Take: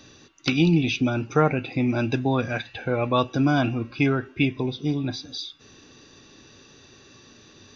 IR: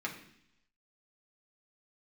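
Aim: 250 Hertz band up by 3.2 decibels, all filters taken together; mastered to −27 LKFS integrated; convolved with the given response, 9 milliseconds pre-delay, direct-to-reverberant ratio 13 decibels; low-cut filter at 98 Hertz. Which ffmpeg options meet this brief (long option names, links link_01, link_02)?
-filter_complex "[0:a]highpass=98,equalizer=frequency=250:width_type=o:gain=4,asplit=2[link_01][link_02];[1:a]atrim=start_sample=2205,adelay=9[link_03];[link_02][link_03]afir=irnorm=-1:irlink=0,volume=-16.5dB[link_04];[link_01][link_04]amix=inputs=2:normalize=0,volume=-5dB"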